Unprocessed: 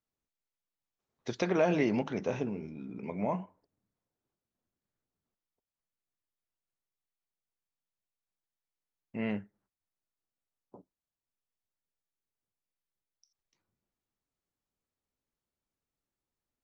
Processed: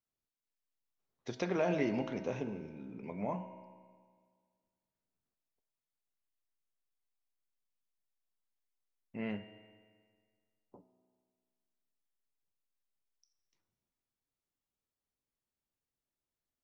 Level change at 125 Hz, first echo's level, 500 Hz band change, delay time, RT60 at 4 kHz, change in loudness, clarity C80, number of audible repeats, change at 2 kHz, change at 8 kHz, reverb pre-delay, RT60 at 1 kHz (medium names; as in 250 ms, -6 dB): -4.5 dB, no echo, -4.5 dB, no echo, 1.7 s, -4.5 dB, 11.5 dB, no echo, -4.5 dB, no reading, 3 ms, 1.8 s